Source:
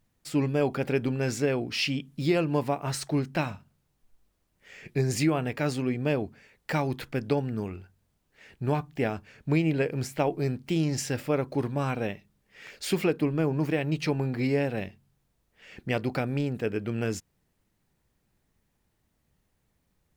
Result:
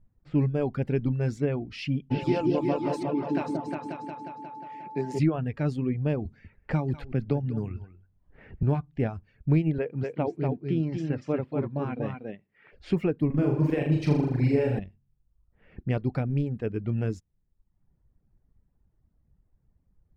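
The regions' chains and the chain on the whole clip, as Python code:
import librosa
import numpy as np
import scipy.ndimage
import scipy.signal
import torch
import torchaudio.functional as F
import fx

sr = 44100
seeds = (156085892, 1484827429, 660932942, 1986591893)

y = fx.highpass(x, sr, hz=210.0, slope=24, at=(2.1, 5.18), fade=0.02)
y = fx.dmg_tone(y, sr, hz=870.0, level_db=-33.0, at=(2.1, 5.18), fade=0.02)
y = fx.echo_opening(y, sr, ms=179, hz=750, octaves=2, feedback_pct=70, wet_db=0, at=(2.1, 5.18), fade=0.02)
y = fx.chain(y, sr, fx.echo_single(ms=192, db=-12.5),
    fx.band_squash(depth_pct=40), at=(6.25, 8.63))
y = fx.chain(y, sr, fx.bandpass_edges(low_hz=170.0, high_hz=3800.0),
    fx.echo_single(ms=239, db=-3.5), at=(9.78, 12.73))
y = fx.chain(y, sr, fx.high_shelf(hz=5900.0, db=9.5),
    fx.room_flutter(wall_m=6.9, rt60_s=1.2), at=(13.26, 14.79))
y = fx.env_lowpass(y, sr, base_hz=1600.0, full_db=-26.0)
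y = fx.riaa(y, sr, side='playback')
y = fx.dereverb_blind(y, sr, rt60_s=0.77)
y = y * librosa.db_to_amplitude(-5.0)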